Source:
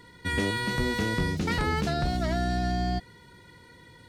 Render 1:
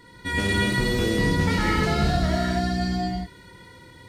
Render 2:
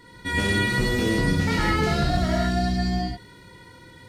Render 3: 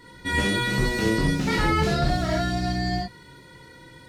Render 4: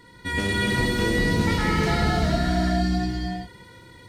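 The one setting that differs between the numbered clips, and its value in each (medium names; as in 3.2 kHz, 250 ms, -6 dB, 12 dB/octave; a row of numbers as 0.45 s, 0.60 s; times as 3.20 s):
gated-style reverb, gate: 290 ms, 190 ms, 100 ms, 490 ms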